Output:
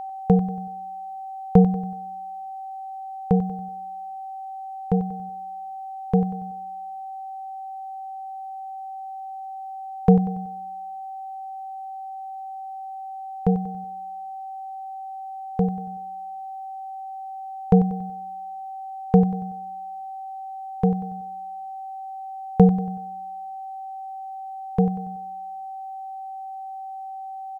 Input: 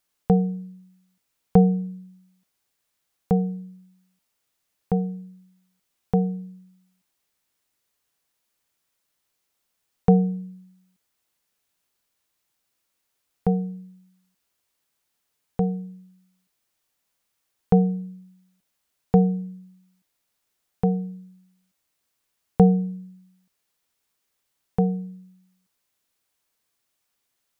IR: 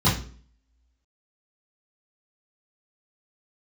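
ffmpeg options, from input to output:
-af "aeval=exprs='val(0)+0.0251*sin(2*PI*770*n/s)':c=same,aecho=1:1:94|188|282|376:0.251|0.111|0.0486|0.0214,volume=1.5dB"

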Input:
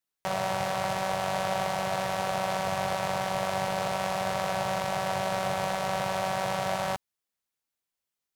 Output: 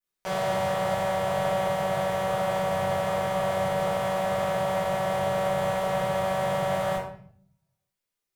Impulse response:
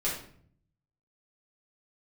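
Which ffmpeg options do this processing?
-filter_complex "[1:a]atrim=start_sample=2205[a];[0:a][a]afir=irnorm=-1:irlink=0,adynamicequalizer=threshold=0.00355:dfrequency=4700:dqfactor=1.1:tfrequency=4700:tqfactor=1.1:attack=5:release=100:ratio=0.375:range=3.5:mode=cutabove:tftype=bell,volume=-4.5dB"

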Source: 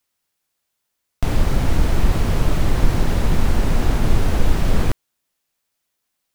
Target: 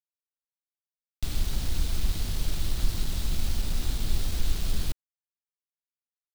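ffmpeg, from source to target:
-af "equalizer=f=125:t=o:w=1:g=-6,equalizer=f=250:t=o:w=1:g=-4,equalizer=f=500:t=o:w=1:g=-10,equalizer=f=1k:t=o:w=1:g=-12,equalizer=f=2k:t=o:w=1:g=-9,equalizer=f=4k:t=o:w=1:g=9,acrusher=bits=4:mix=0:aa=0.000001,volume=-9dB"

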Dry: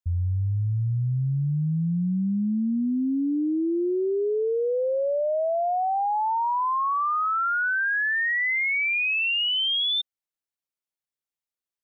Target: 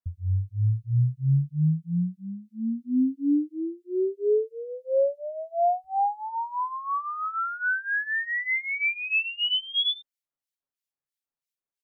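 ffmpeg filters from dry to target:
-filter_complex "[0:a]asetnsamples=n=441:p=0,asendcmd='5.84 equalizer g -6.5',equalizer=f=71:t=o:w=0.41:g=10,aecho=1:1:7.3:0.79,acrossover=split=1800[a][b];[a]aeval=exprs='val(0)*(1-1/2+1/2*cos(2*PI*3*n/s))':c=same[c];[b]aeval=exprs='val(0)*(1-1/2-1/2*cos(2*PI*3*n/s))':c=same[d];[c][d]amix=inputs=2:normalize=0"

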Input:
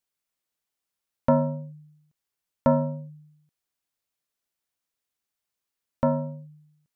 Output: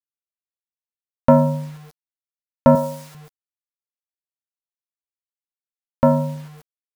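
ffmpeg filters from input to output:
-filter_complex "[0:a]asplit=2[a][b];[b]aecho=0:1:87|174|261|348:0.0631|0.0347|0.0191|0.0105[c];[a][c]amix=inputs=2:normalize=0,acontrast=32,acrusher=bits=7:mix=0:aa=0.000001,asettb=1/sr,asplit=3[d][e][f];[d]atrim=end=2.754[g];[e]atrim=start=2.75:end=3.15,asetpts=PTS-STARTPTS,afade=t=in:d=0.004:c=qsin,afade=t=out:st=0.396:d=0.004:c=qsin,bass=f=250:g=-13,treble=f=4k:g=8[h];[f]atrim=start=3.146[i];[g][h]acrossfade=d=0.004:c1=hsin:c2=qsin[j];[j][i]acrossfade=d=0.004:c1=qsin:c2=hsin,volume=3dB"

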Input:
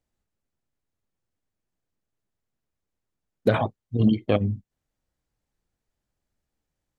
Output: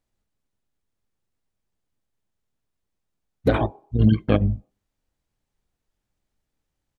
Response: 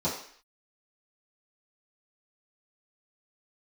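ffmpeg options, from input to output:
-filter_complex "[0:a]asplit=2[a][b];[b]highpass=f=110:w=0.5412,highpass=f=110:w=1.3066,equalizer=f=170:t=q:w=4:g=-5,equalizer=f=250:t=q:w=4:g=-6,equalizer=f=410:t=q:w=4:g=-8,equalizer=f=820:t=q:w=4:g=9,equalizer=f=1.4k:t=q:w=4:g=-6,equalizer=f=2k:t=q:w=4:g=-9,lowpass=f=3.3k:w=0.5412,lowpass=f=3.3k:w=1.3066[c];[1:a]atrim=start_sample=2205,highshelf=f=2.1k:g=-8[d];[c][d]afir=irnorm=-1:irlink=0,volume=-29.5dB[e];[a][e]amix=inputs=2:normalize=0,asplit=2[f][g];[g]asetrate=22050,aresample=44100,atempo=2,volume=-2dB[h];[f][h]amix=inputs=2:normalize=0"

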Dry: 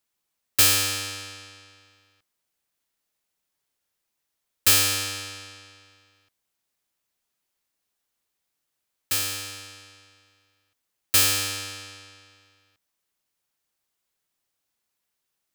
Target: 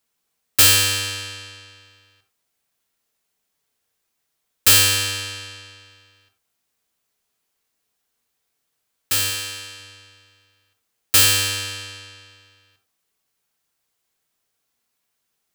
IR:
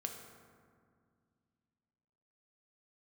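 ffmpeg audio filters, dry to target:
-filter_complex "[0:a]asettb=1/sr,asplit=3[a][b][c];[a]atrim=end=9.304[d];[b]atrim=start=9.3:end=9.8,asetpts=PTS-STARTPTS,afade=t=in:d=0.004:c=qsin,afade=t=out:st=0.496:d=0.004:c=qsin,lowshelf=f=170:g=-7[e];[c]atrim=start=9.796[f];[d][e]acrossfade=d=0.004:c1=hsin:c2=qsin[g];[g][f]acrossfade=d=0.004:c1=qsin:c2=hsin[h];[1:a]atrim=start_sample=2205,atrim=end_sample=4410[i];[h][i]afir=irnorm=-1:irlink=0,volume=7dB"

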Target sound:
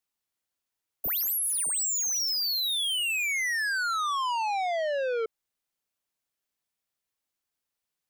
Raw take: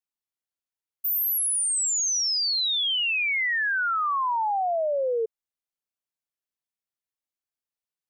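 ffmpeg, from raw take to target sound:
-af "asoftclip=type=tanh:threshold=-34dB,volume=6.5dB"

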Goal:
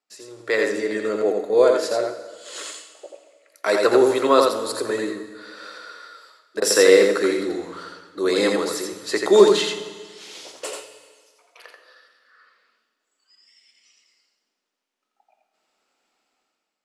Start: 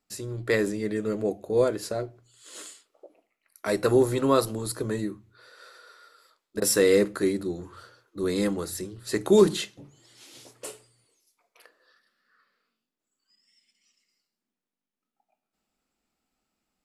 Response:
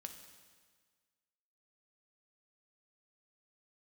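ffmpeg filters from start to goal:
-filter_complex "[0:a]acrossover=split=340 7600:gain=0.0631 1 0.2[a][b][c];[a][b][c]amix=inputs=3:normalize=0,dynaudnorm=f=130:g=9:m=12dB,asplit=2[d][e];[1:a]atrim=start_sample=2205,adelay=85[f];[e][f]afir=irnorm=-1:irlink=0,volume=2dB[g];[d][g]amix=inputs=2:normalize=0,volume=-2dB"

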